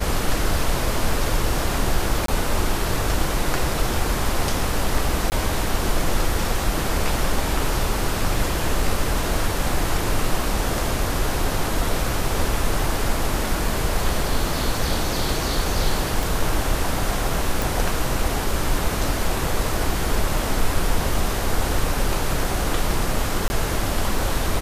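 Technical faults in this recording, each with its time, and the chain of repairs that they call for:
0:02.26–0:02.28: drop-out 23 ms
0:05.30–0:05.32: drop-out 19 ms
0:16.23: click
0:17.62: click
0:23.48–0:23.50: drop-out 20 ms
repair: click removal
repair the gap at 0:02.26, 23 ms
repair the gap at 0:05.30, 19 ms
repair the gap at 0:23.48, 20 ms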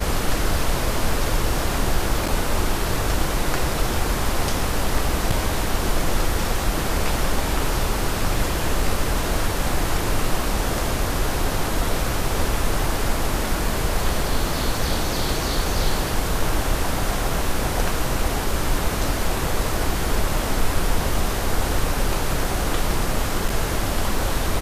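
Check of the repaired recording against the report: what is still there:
none of them is left

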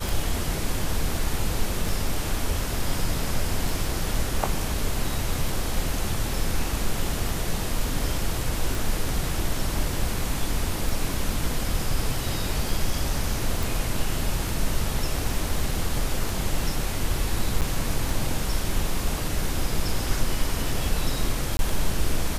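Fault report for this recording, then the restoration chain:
scratch tick 33 1/3 rpm
0:08.75: click
0:13.63: click
0:17.61–0:17.62: drop-out 8.3 ms
0:21.57–0:21.59: drop-out 21 ms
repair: click removal
repair the gap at 0:17.61, 8.3 ms
repair the gap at 0:21.57, 21 ms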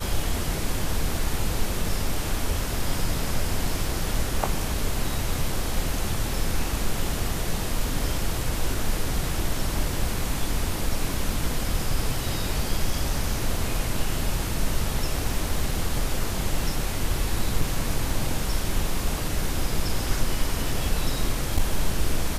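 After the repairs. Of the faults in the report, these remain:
none of them is left

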